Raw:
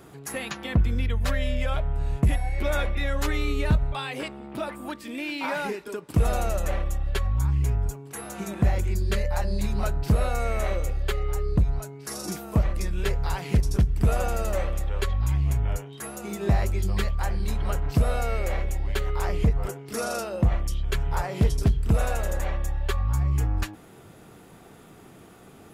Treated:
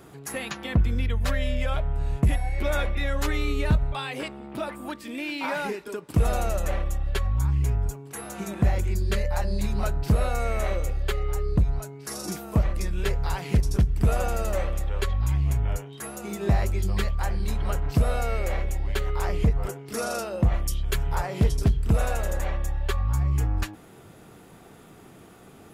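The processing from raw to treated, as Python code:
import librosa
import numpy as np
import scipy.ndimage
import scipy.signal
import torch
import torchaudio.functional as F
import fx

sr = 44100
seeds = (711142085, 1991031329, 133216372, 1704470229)

y = fx.high_shelf(x, sr, hz=fx.line((20.53, 6500.0), (21.13, 9400.0)), db=11.0, at=(20.53, 21.13), fade=0.02)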